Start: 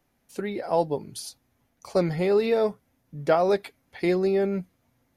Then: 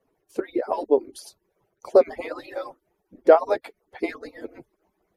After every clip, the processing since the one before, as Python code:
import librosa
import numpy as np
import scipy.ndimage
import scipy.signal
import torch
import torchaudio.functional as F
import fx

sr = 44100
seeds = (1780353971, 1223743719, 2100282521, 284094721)

y = fx.hpss_only(x, sr, part='percussive')
y = fx.curve_eq(y, sr, hz=(150.0, 390.0, 3700.0), db=(0, 13, -3))
y = F.gain(torch.from_numpy(y), -1.5).numpy()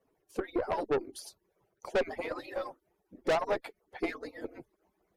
y = fx.tube_stage(x, sr, drive_db=22.0, bias=0.4)
y = F.gain(torch.from_numpy(y), -2.0).numpy()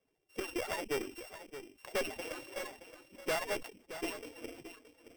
y = np.r_[np.sort(x[:len(x) // 16 * 16].reshape(-1, 16), axis=1).ravel(), x[len(x) // 16 * 16:]]
y = y + 10.0 ** (-12.0 / 20.0) * np.pad(y, (int(622 * sr / 1000.0), 0))[:len(y)]
y = fx.sustainer(y, sr, db_per_s=110.0)
y = F.gain(torch.from_numpy(y), -6.0).numpy()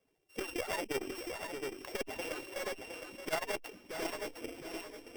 y = fx.echo_feedback(x, sr, ms=712, feedback_pct=24, wet_db=-7.5)
y = fx.transformer_sat(y, sr, knee_hz=280.0)
y = F.gain(torch.from_numpy(y), 2.5).numpy()